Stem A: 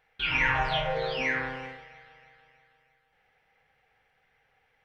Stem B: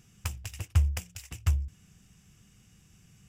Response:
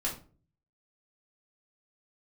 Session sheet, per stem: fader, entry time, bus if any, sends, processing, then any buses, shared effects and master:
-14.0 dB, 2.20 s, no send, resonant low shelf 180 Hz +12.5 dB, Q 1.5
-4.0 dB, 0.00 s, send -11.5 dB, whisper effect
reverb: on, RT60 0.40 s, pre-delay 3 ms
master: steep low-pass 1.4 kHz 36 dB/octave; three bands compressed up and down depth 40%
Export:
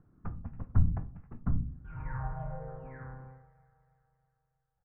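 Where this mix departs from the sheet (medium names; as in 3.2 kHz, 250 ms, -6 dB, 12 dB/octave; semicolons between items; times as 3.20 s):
stem A: entry 2.20 s -> 1.65 s; master: missing three bands compressed up and down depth 40%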